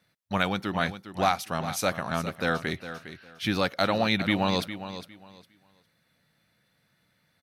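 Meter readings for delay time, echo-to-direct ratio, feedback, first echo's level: 407 ms, −12.0 dB, 22%, −12.0 dB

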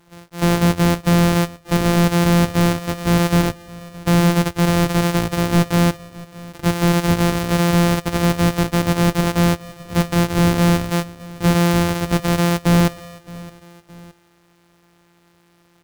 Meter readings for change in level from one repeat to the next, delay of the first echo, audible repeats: −6.0 dB, 617 ms, 2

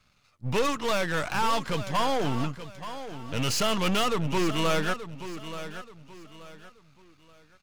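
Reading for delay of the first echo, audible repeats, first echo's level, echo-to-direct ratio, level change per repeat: 879 ms, 3, −12.0 dB, −11.5 dB, −10.0 dB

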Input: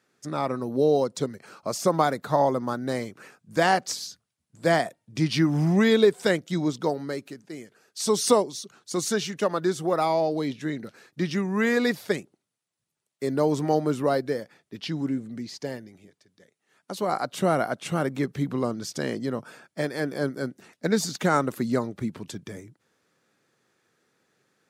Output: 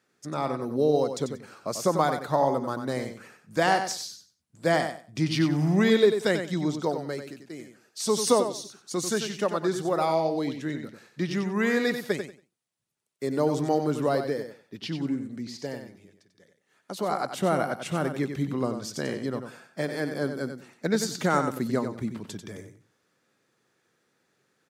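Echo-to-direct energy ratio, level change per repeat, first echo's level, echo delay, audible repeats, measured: −8.0 dB, −14.0 dB, −8.0 dB, 93 ms, 2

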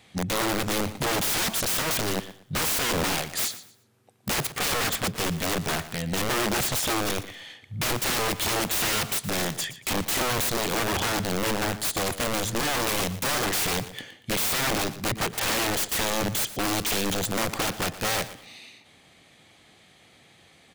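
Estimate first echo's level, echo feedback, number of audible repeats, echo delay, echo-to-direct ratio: −15.0 dB, 26%, 2, 118 ms, −14.5 dB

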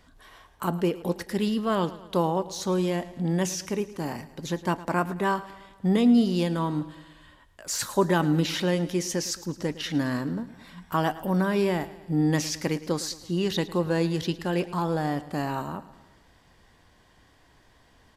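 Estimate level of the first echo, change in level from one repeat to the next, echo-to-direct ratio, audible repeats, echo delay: −17.0 dB, −5.0 dB, −15.5 dB, 4, 109 ms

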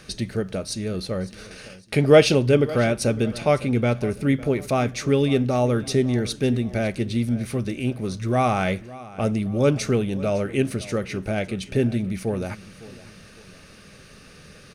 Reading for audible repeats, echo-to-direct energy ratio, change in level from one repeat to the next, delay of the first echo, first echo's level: 2, −18.0 dB, −8.0 dB, 555 ms, −18.5 dB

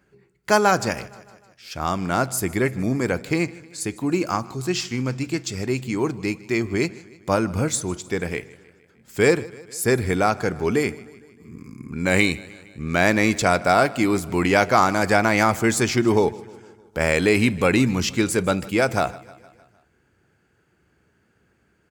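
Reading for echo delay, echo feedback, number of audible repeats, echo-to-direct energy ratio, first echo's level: 154 ms, 58%, 3, −19.0 dB, −21.0 dB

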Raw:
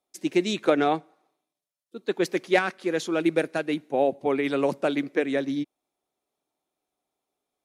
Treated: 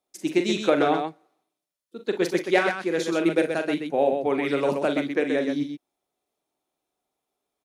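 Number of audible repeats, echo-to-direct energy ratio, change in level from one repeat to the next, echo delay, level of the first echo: 2, −3.5 dB, repeats not evenly spaced, 41 ms, −8.0 dB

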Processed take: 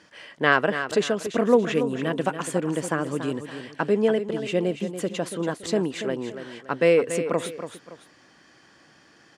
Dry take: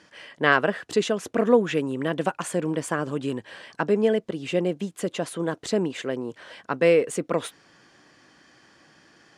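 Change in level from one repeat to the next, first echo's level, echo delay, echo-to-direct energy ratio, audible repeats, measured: −9.0 dB, −10.0 dB, 284 ms, −9.5 dB, 2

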